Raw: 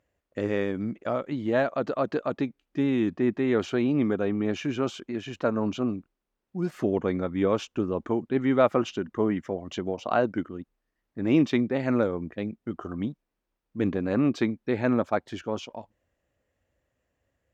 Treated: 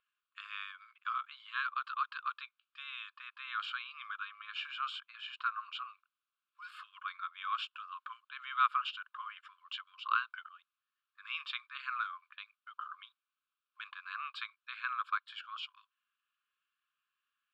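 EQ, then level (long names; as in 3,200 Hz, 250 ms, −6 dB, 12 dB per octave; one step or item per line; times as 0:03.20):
linear-phase brick-wall high-pass 1,000 Hz
high-frequency loss of the air 73 metres
phaser with its sweep stopped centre 1,300 Hz, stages 8
+2.0 dB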